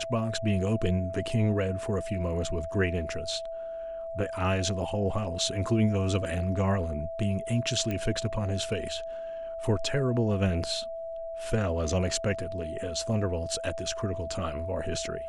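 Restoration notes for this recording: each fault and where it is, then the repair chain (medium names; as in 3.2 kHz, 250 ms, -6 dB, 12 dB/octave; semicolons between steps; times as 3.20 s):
whine 660 Hz -34 dBFS
7.91 s: pop -19 dBFS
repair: de-click; band-stop 660 Hz, Q 30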